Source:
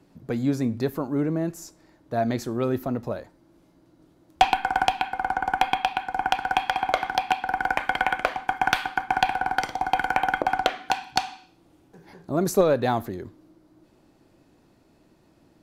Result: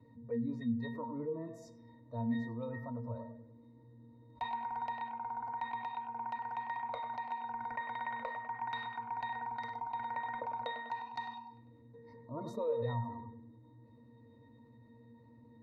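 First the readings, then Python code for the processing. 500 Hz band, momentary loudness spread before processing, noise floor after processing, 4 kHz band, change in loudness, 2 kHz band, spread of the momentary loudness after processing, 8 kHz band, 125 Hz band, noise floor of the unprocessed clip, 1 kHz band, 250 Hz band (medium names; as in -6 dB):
-14.5 dB, 8 LU, -60 dBFS, -21.5 dB, -14.5 dB, -18.5 dB, 22 LU, under -30 dB, -10.5 dB, -60 dBFS, -14.0 dB, -12.0 dB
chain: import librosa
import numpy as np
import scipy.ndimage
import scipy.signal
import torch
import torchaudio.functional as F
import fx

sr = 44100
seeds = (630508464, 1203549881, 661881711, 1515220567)

y = fx.dynamic_eq(x, sr, hz=980.0, q=1.1, threshold_db=-34.0, ratio=4.0, max_db=3)
y = fx.octave_resonator(y, sr, note='A#', decay_s=0.27)
y = fx.echo_wet_lowpass(y, sr, ms=99, feedback_pct=39, hz=3200.0, wet_db=-10.0)
y = fx.noise_reduce_blind(y, sr, reduce_db=13)
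y = fx.env_flatten(y, sr, amount_pct=50)
y = F.gain(torch.from_numpy(y), -2.5).numpy()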